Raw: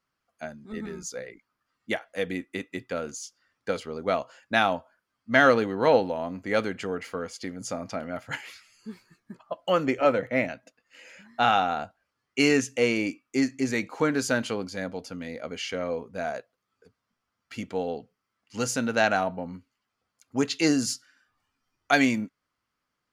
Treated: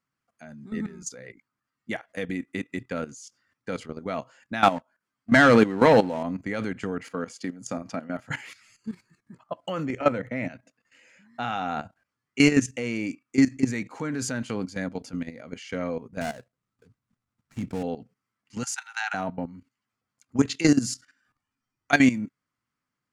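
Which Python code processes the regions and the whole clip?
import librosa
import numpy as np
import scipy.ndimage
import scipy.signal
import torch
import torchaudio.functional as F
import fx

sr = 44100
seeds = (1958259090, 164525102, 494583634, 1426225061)

y = fx.chain(x, sr, fx.peak_eq(hz=95.0, db=-6.5, octaves=1.4),
    fx.leveller(passes=2), at=(4.63, 6.23))
y = fx.chain(y, sr, fx.highpass(hz=150.0, slope=12),
    fx.notch(hz=2100.0, q=11.0), at=(7.02, 8.3))
y = fx.chain(y, sr, fx.dead_time(dead_ms=0.16),
    fx.low_shelf(hz=160.0, db=12.0), at=(16.21, 17.83))
y = fx.chain(y, sr, fx.cheby1_highpass(hz=770.0, order=8),
    fx.notch(hz=1100.0, q=6.9), at=(18.63, 19.14))
y = fx.graphic_eq(y, sr, hz=(125, 250, 1000, 2000, 8000), db=(11, 7, 3, 5, 9))
y = fx.level_steps(y, sr, step_db=14)
y = fx.high_shelf(y, sr, hz=7400.0, db=-4.5)
y = F.gain(torch.from_numpy(y), -1.0).numpy()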